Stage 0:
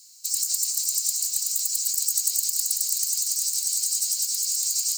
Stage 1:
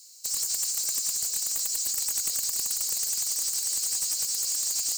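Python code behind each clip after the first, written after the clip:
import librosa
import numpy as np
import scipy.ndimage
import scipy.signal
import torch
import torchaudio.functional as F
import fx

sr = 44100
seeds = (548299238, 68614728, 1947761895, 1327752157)

y = fx.highpass_res(x, sr, hz=480.0, q=4.9)
y = 10.0 ** (-22.5 / 20.0) * np.tanh(y / 10.0 ** (-22.5 / 20.0))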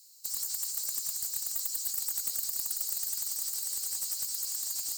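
y = fx.graphic_eq_15(x, sr, hz=(400, 2500, 6300, 16000), db=(-4, -5, -6, 6))
y = y * librosa.db_to_amplitude(-5.0)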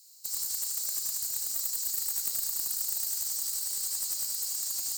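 y = fx.room_early_taps(x, sr, ms=(34, 77), db=(-9.0, -4.5))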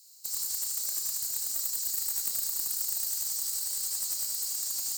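y = fx.doubler(x, sr, ms=29.0, db=-12.0)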